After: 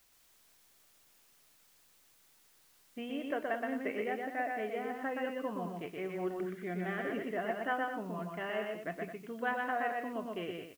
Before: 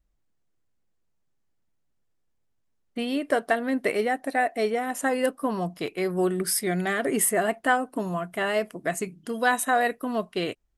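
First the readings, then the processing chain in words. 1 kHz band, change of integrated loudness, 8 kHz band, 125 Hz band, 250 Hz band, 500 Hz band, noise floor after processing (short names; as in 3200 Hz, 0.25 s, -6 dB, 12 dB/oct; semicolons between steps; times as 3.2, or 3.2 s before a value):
-10.5 dB, -11.0 dB, under -30 dB, -10.5 dB, -10.5 dB, -10.5 dB, -66 dBFS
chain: steep low-pass 3200 Hz 72 dB/oct; flange 0.3 Hz, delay 6.7 ms, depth 4.7 ms, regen -87%; requantised 10-bit, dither triangular; on a send: loudspeakers at several distances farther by 42 m -3 dB, 74 m -10 dB; on the sum: gain -8 dB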